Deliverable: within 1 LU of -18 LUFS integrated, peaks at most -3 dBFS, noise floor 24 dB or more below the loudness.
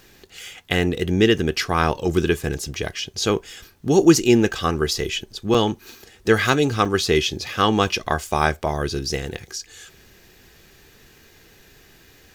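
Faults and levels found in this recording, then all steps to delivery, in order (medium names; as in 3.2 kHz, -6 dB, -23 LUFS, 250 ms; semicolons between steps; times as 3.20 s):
dropouts 2; longest dropout 5.4 ms; loudness -21.0 LUFS; peak level -2.0 dBFS; loudness target -18.0 LUFS
-> interpolate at 5.54/6.85 s, 5.4 ms; trim +3 dB; peak limiter -3 dBFS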